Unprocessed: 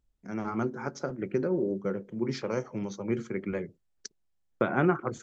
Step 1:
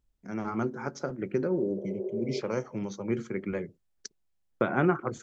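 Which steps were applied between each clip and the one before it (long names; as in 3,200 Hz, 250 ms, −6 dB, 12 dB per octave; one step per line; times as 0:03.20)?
healed spectral selection 0:01.79–0:02.38, 350–2,000 Hz before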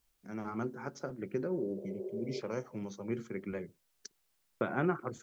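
bit-depth reduction 12 bits, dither triangular
level −6.5 dB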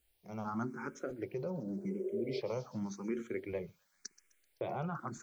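brickwall limiter −28.5 dBFS, peak gain reduction 9 dB
delay with a high-pass on its return 128 ms, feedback 71%, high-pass 2,400 Hz, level −16 dB
frequency shifter mixed with the dry sound +0.9 Hz
level +3.5 dB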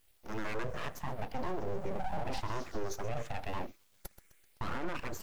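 brickwall limiter −34 dBFS, peak gain reduction 8.5 dB
full-wave rectification
level +8.5 dB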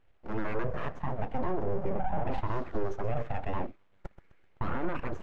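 running median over 9 samples
head-to-tape spacing loss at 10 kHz 25 dB
level +6.5 dB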